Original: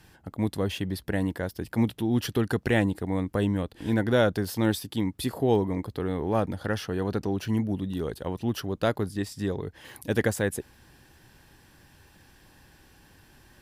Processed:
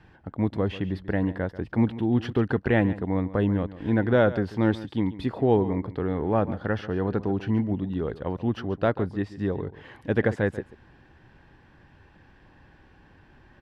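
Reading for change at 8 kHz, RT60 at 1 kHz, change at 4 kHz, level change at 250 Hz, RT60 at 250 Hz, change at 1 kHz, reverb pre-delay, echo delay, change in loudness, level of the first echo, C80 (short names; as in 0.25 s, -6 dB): under -20 dB, none, -6.5 dB, +2.0 dB, none, +2.0 dB, none, 0.139 s, +2.0 dB, -16.0 dB, none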